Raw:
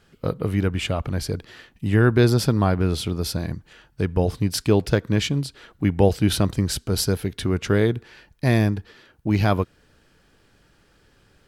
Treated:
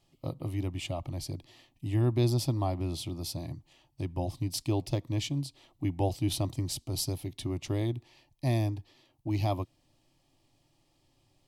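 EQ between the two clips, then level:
phaser with its sweep stopped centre 300 Hz, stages 8
−7.5 dB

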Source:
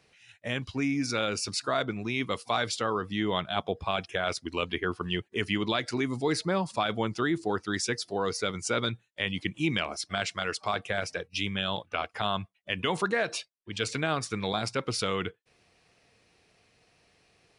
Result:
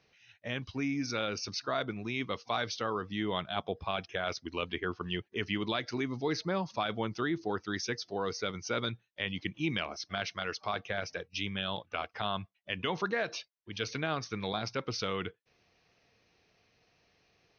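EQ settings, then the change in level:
linear-phase brick-wall low-pass 6,500 Hz
−4.5 dB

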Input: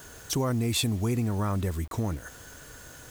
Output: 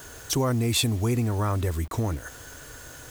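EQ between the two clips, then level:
parametric band 190 Hz −14 dB 0.21 octaves
+3.5 dB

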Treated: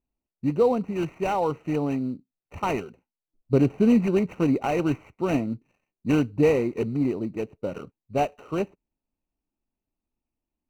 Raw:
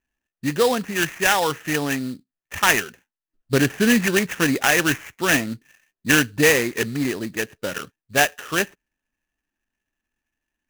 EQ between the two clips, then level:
moving average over 26 samples
0.0 dB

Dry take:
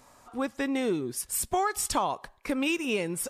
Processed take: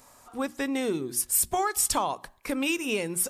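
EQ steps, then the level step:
high-shelf EQ 7,400 Hz +10 dB
mains-hum notches 60/120/180/240/300/360 Hz
0.0 dB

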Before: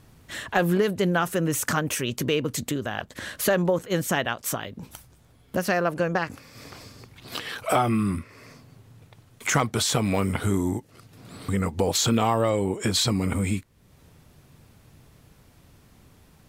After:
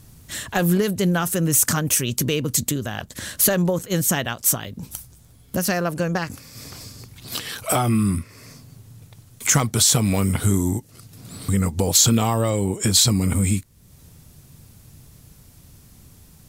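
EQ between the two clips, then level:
bass and treble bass +8 dB, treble +10 dB
high-shelf EQ 5,600 Hz +4 dB
−1.0 dB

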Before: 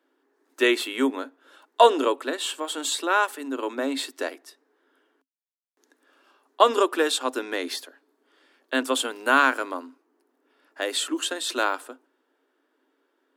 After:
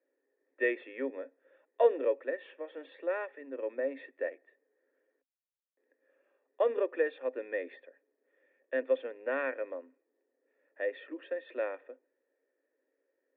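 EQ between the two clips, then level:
formant resonators in series e
+1.5 dB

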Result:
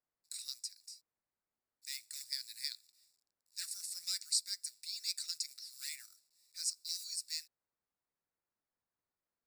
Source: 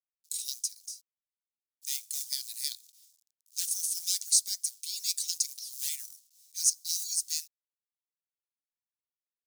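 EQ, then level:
moving average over 14 samples
+10.0 dB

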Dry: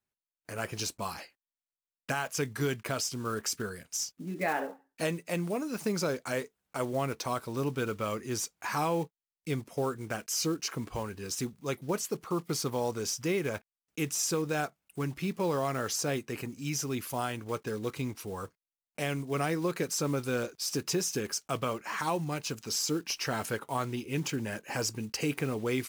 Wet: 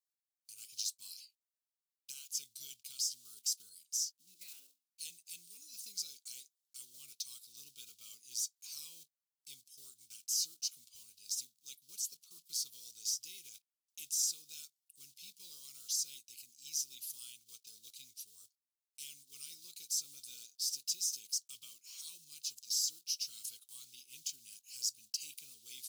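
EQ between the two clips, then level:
inverse Chebyshev high-pass filter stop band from 1,900 Hz, stop band 40 dB
−1.5 dB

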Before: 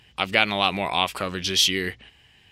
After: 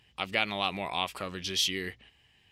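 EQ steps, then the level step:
notch filter 1,500 Hz, Q 19
−8.5 dB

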